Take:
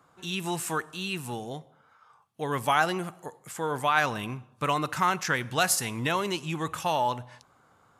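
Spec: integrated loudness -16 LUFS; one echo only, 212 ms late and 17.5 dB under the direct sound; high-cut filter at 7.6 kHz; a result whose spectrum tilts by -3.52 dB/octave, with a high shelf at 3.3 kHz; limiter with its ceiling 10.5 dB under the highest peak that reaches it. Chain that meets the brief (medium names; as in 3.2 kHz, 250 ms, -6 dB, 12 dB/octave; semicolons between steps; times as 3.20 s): low-pass 7.6 kHz; treble shelf 3.3 kHz +5 dB; peak limiter -18.5 dBFS; delay 212 ms -17.5 dB; trim +15 dB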